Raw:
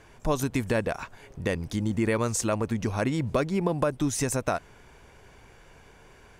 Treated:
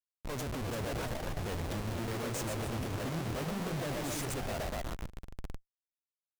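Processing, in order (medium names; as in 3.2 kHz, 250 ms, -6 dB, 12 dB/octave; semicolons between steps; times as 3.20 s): bass shelf 130 Hz +9.5 dB; hum notches 60/120 Hz; peak limiter -20.5 dBFS, peak gain reduction 11 dB; Chebyshev shaper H 3 -25 dB, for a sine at -20.5 dBFS; repeats whose band climbs or falls 122 ms, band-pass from 460 Hz, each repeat 0.7 oct, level -1.5 dB; Schmitt trigger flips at -38.5 dBFS; ever faster or slower copies 385 ms, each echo +2 st, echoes 3, each echo -6 dB; trim -5.5 dB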